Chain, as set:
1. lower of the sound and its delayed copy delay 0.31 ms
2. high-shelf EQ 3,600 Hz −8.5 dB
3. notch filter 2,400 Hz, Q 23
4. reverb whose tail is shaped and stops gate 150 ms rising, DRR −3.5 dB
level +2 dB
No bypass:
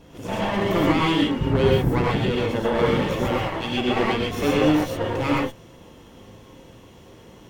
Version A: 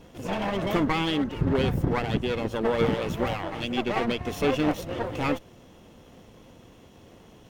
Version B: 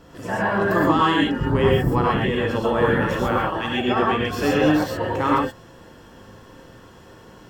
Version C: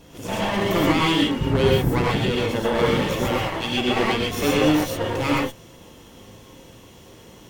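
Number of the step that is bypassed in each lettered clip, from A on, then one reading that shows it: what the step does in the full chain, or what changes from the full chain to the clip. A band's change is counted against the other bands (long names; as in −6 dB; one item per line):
4, change in integrated loudness −5.0 LU
1, 1 kHz band +4.0 dB
2, 8 kHz band +6.5 dB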